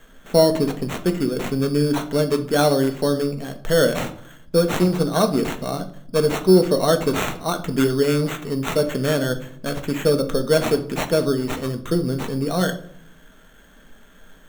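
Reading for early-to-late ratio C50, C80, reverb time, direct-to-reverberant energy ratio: 13.5 dB, 17.0 dB, 0.60 s, 6.0 dB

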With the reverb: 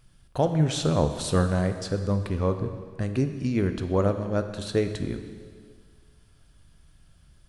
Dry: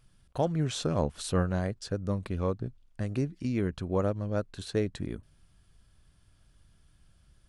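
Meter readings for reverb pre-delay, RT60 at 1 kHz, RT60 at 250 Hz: 5 ms, 1.9 s, 1.8 s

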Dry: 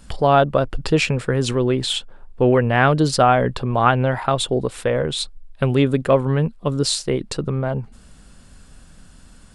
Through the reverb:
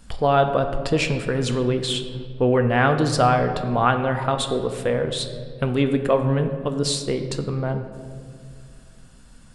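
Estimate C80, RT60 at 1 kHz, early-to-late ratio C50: 10.0 dB, 1.7 s, 9.0 dB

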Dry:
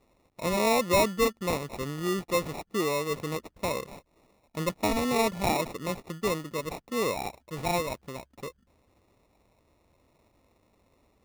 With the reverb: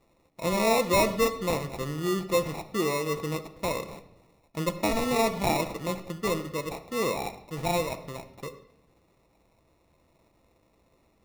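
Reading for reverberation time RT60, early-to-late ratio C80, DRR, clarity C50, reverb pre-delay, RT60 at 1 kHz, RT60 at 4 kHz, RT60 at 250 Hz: 0.85 s, 14.5 dB, 8.0 dB, 13.0 dB, 6 ms, 0.80 s, 0.70 s, 1.0 s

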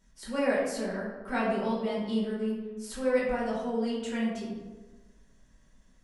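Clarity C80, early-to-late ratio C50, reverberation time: 4.0 dB, 1.5 dB, 1.3 s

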